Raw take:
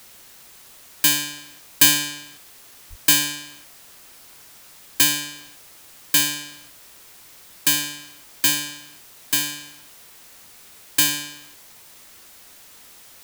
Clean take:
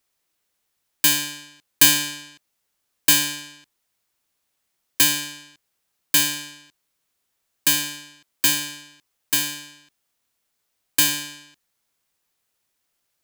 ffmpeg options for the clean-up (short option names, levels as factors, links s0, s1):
-filter_complex "[0:a]asplit=3[s0][s1][s2];[s0]afade=t=out:st=2.89:d=0.02[s3];[s1]highpass=f=140:w=0.5412,highpass=f=140:w=1.3066,afade=t=in:st=2.89:d=0.02,afade=t=out:st=3.01:d=0.02[s4];[s2]afade=t=in:st=3.01:d=0.02[s5];[s3][s4][s5]amix=inputs=3:normalize=0,afwtdn=0.0045"